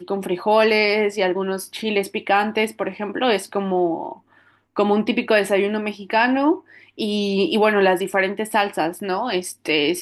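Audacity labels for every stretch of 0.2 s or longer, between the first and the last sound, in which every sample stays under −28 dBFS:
4.130000	4.760000	silence
6.570000	6.990000	silence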